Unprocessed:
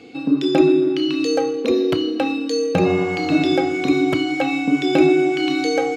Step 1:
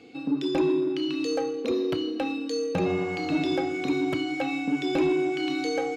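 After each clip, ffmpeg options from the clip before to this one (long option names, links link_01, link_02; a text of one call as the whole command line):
ffmpeg -i in.wav -af "asoftclip=type=tanh:threshold=-8.5dB,volume=-7.5dB" out.wav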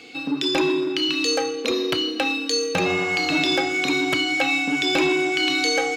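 ffmpeg -i in.wav -af "tiltshelf=frequency=920:gain=-8,volume=7.5dB" out.wav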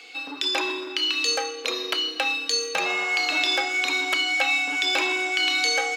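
ffmpeg -i in.wav -af "highpass=680" out.wav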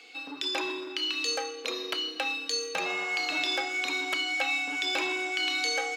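ffmpeg -i in.wav -af "lowshelf=frequency=310:gain=6,volume=-6.5dB" out.wav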